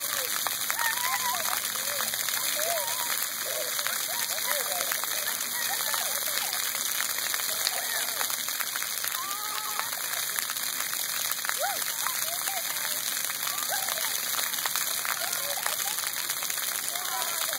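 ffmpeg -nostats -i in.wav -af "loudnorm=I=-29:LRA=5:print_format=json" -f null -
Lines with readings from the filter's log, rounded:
"input_i" : "-27.2",
"input_tp" : "-3.8",
"input_lra" : "1.0",
"input_thresh" : "-37.2",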